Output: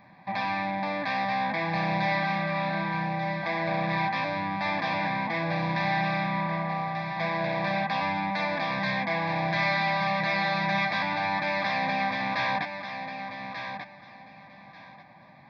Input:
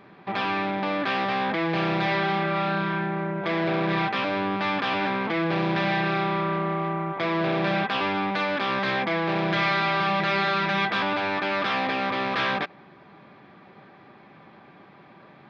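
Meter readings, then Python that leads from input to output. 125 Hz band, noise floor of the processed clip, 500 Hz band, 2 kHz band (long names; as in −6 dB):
−2.0 dB, −51 dBFS, −5.0 dB, −1.5 dB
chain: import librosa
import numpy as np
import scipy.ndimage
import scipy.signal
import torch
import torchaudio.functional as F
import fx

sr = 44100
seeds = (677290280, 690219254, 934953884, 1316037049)

y = fx.fixed_phaser(x, sr, hz=2000.0, stages=8)
y = fx.echo_feedback(y, sr, ms=1188, feedback_pct=20, wet_db=-8)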